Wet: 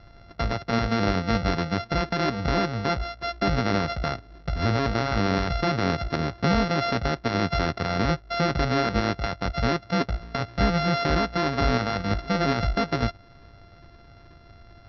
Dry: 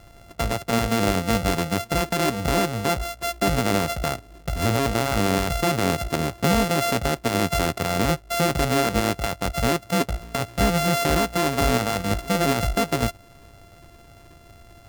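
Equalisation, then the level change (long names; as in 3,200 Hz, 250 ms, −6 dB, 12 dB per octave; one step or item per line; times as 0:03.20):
Chebyshev low-pass with heavy ripple 5,800 Hz, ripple 6 dB
low-shelf EQ 340 Hz +6 dB
0.0 dB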